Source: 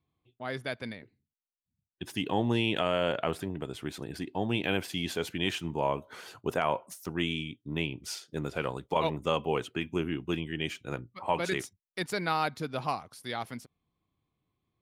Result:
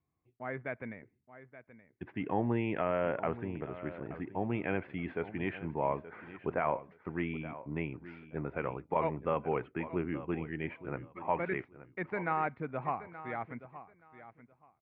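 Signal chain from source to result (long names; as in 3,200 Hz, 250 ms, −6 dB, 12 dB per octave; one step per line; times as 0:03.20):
elliptic low-pass filter 2,200 Hz, stop band 80 dB
repeating echo 875 ms, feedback 19%, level −14.5 dB
level −2.5 dB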